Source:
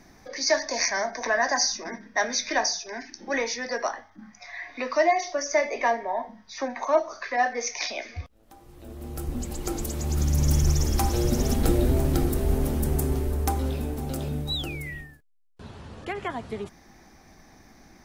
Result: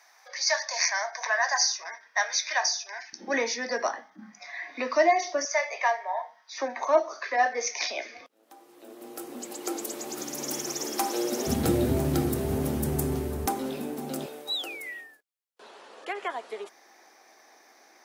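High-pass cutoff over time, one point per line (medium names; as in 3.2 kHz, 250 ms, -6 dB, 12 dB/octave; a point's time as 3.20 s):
high-pass 24 dB/octave
750 Hz
from 3.13 s 180 Hz
from 5.45 s 680 Hz
from 6.53 s 300 Hz
from 11.47 s 89 Hz
from 13.46 s 190 Hz
from 14.26 s 410 Hz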